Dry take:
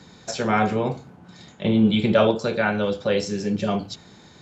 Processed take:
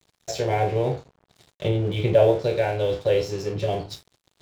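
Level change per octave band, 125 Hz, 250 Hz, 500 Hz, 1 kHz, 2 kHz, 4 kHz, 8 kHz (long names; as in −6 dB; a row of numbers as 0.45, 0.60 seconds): +2.0 dB, −9.5 dB, +2.0 dB, −3.0 dB, −7.0 dB, −4.5 dB, can't be measured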